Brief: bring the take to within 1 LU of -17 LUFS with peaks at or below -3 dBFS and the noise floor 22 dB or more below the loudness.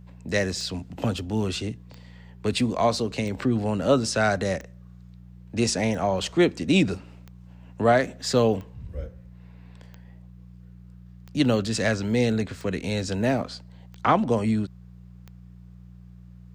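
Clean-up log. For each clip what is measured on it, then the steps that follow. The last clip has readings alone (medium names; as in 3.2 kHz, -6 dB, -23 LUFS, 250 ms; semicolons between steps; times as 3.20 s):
clicks found 12; hum 60 Hz; highest harmonic 180 Hz; hum level -42 dBFS; loudness -25.0 LUFS; peak level -7.5 dBFS; loudness target -17.0 LUFS
-> de-click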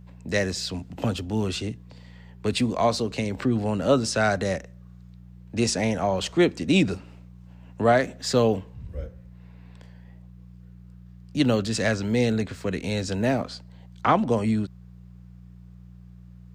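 clicks found 0; hum 60 Hz; highest harmonic 180 Hz; hum level -42 dBFS
-> de-hum 60 Hz, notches 3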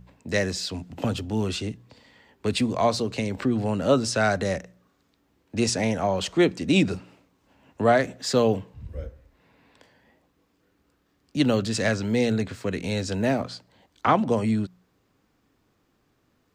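hum not found; loudness -25.0 LUFS; peak level -7.5 dBFS; loudness target -17.0 LUFS
-> trim +8 dB; peak limiter -3 dBFS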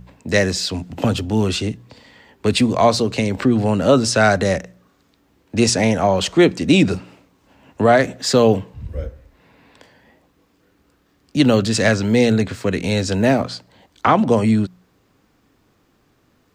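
loudness -17.5 LUFS; peak level -3.0 dBFS; noise floor -61 dBFS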